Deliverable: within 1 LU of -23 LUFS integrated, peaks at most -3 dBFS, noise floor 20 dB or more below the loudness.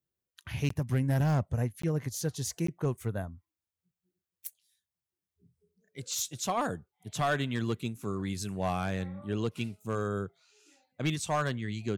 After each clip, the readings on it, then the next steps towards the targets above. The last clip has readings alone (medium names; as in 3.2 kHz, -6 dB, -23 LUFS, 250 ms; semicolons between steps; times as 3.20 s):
clipped samples 0.7%; clipping level -22.0 dBFS; dropouts 3; longest dropout 14 ms; loudness -32.5 LUFS; peak level -22.0 dBFS; loudness target -23.0 LUFS
-> clip repair -22 dBFS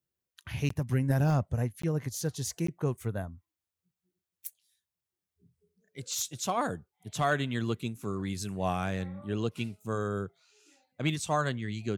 clipped samples 0.0%; dropouts 3; longest dropout 14 ms
-> interpolate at 0.69/1.82/2.67 s, 14 ms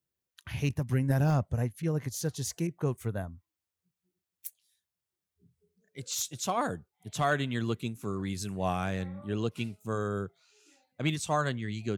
dropouts 0; loudness -32.0 LUFS; peak level -14.5 dBFS; loudness target -23.0 LUFS
-> trim +9 dB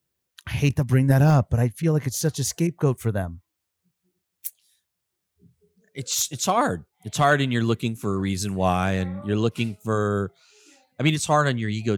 loudness -23.0 LUFS; peak level -5.5 dBFS; noise floor -80 dBFS